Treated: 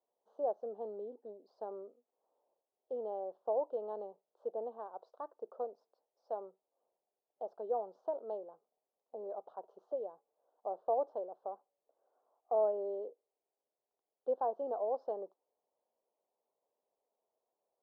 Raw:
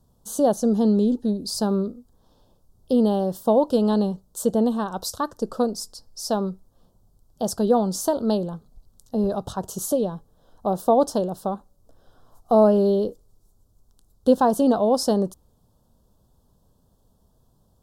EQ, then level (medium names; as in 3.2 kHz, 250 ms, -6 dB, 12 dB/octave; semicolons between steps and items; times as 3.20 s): Butterworth band-pass 550 Hz, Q 1.3; distance through air 270 m; differentiator; +8.5 dB